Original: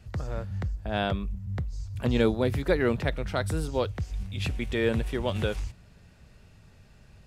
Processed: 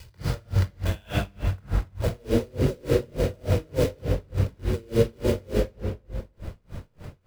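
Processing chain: treble shelf 5.5 kHz +8 dB; band-stop 3.8 kHz; de-hum 50.96 Hz, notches 36; peak limiter -22.5 dBFS, peak gain reduction 11 dB; compression 12:1, threshold -32 dBFS, peak gain reduction 6.5 dB; low-pass sweep 4.5 kHz -> 560 Hz, 0.71–2.23 s; companded quantiser 4-bit; simulated room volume 2900 m³, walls mixed, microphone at 4.8 m; logarithmic tremolo 3.4 Hz, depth 33 dB; trim +4.5 dB

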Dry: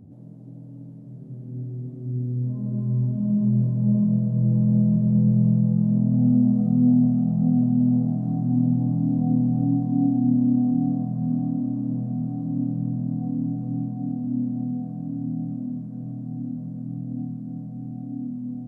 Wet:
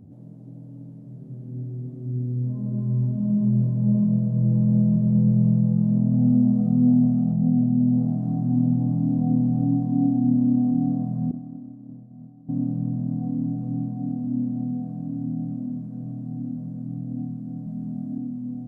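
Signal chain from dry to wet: 7.33–7.98 s: Bessel low-pass 800 Hz, order 2; 11.31–12.49 s: expander -15 dBFS; 17.66–18.18 s: comb 4.9 ms, depth 95%

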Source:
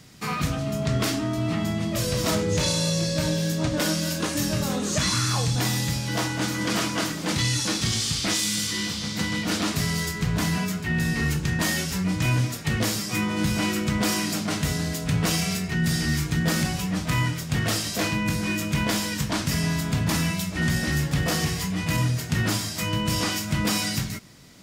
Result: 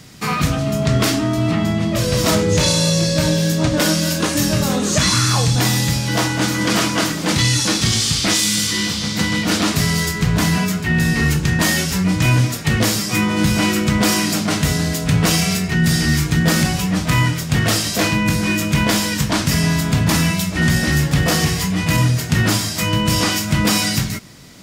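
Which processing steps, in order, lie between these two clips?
1.51–2.13 s: treble shelf 6 kHz -7 dB; trim +8 dB

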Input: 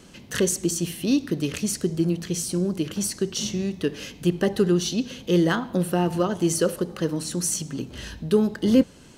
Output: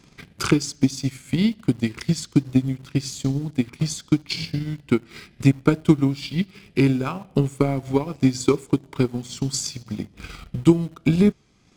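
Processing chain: tape speed -22%; transient shaper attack +11 dB, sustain -6 dB; in parallel at -11 dB: bit crusher 6-bit; on the sum: wow and flutter 25 cents; trim -5.5 dB

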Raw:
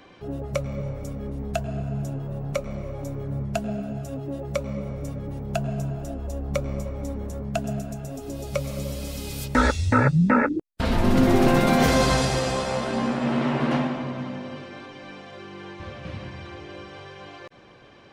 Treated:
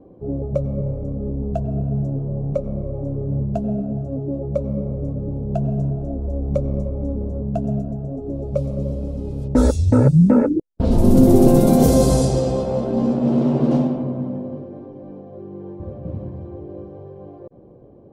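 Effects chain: level-controlled noise filter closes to 820 Hz, open at -15.5 dBFS; FFT filter 500 Hz 0 dB, 1.9 kHz -25 dB, 10 kHz +2 dB; trim +7 dB

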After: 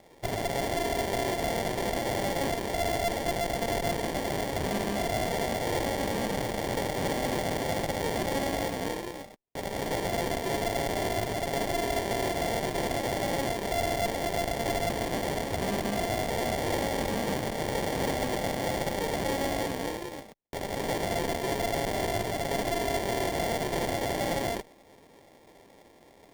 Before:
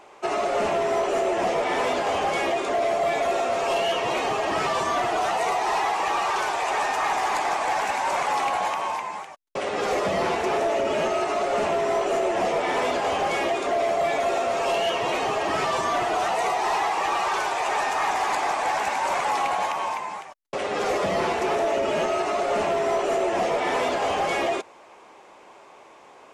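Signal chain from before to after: tone controls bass -6 dB, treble +6 dB; Chebyshev shaper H 6 -15 dB, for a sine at -11 dBFS; sample-and-hold 32×; sliding maximum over 3 samples; trim -6.5 dB

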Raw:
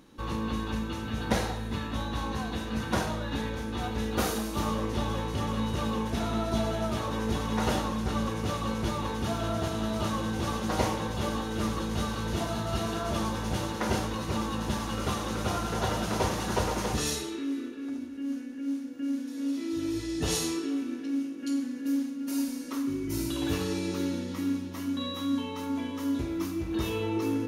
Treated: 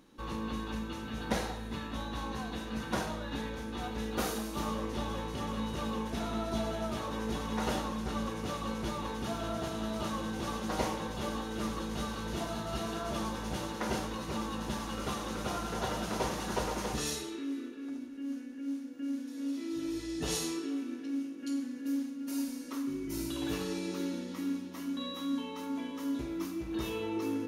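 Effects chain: peaking EQ 93 Hz -15 dB 0.39 oct; trim -4.5 dB

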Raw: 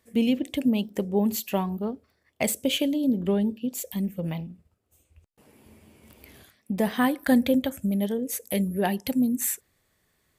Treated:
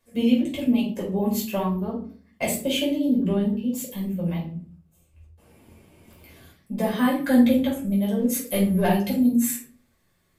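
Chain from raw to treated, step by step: 8.17–8.99 s: waveshaping leveller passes 1; simulated room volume 330 m³, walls furnished, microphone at 5.3 m; trim -7.5 dB

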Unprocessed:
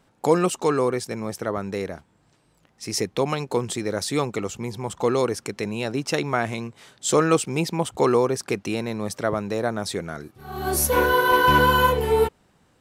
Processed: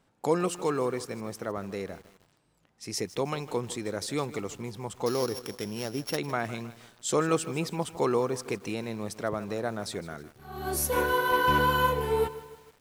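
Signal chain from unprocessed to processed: 5.06–6.17 s: sorted samples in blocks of 8 samples; bit-crushed delay 156 ms, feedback 55%, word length 6-bit, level -15 dB; trim -7 dB

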